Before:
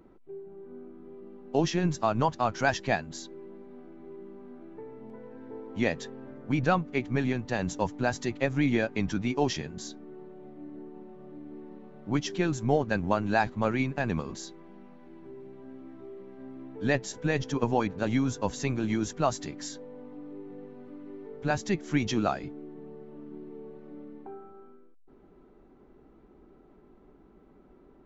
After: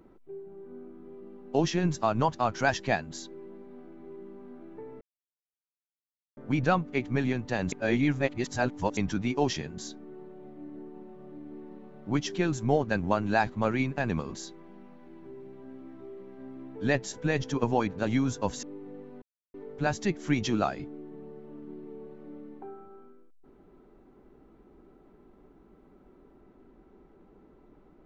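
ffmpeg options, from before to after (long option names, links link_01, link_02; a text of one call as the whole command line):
ffmpeg -i in.wav -filter_complex "[0:a]asplit=8[link_01][link_02][link_03][link_04][link_05][link_06][link_07][link_08];[link_01]atrim=end=5.01,asetpts=PTS-STARTPTS,afade=type=out:start_time=5.006:duration=0.004:curve=hsin[link_09];[link_02]atrim=start=5.01:end=6.37,asetpts=PTS-STARTPTS,volume=0[link_10];[link_03]atrim=start=6.37:end=7.722,asetpts=PTS-STARTPTS,afade=type=in:duration=0.004:curve=hsin[link_11];[link_04]atrim=start=7.718:end=8.972,asetpts=PTS-STARTPTS,areverse[link_12];[link_05]atrim=start=8.968:end=18.632[link_13];[link_06]atrim=start=20.268:end=20.86,asetpts=PTS-STARTPTS,afade=type=out:start_time=0.588:duration=0.004:curve=hsin[link_14];[link_07]atrim=start=20.86:end=21.18,asetpts=PTS-STARTPTS,volume=0[link_15];[link_08]atrim=start=21.18,asetpts=PTS-STARTPTS,afade=type=in:duration=0.004:curve=hsin[link_16];[link_09][link_10][link_11]concat=n=3:v=0:a=1[link_17];[link_17][link_12]acrossfade=duration=0.004:curve1=hsin:curve2=hsin[link_18];[link_18][link_13]acrossfade=duration=0.004:curve1=hsin:curve2=hsin[link_19];[link_14][link_15][link_16]concat=n=3:v=0:a=1[link_20];[link_19][link_20]acrossfade=duration=0.004:curve1=hsin:curve2=hsin" out.wav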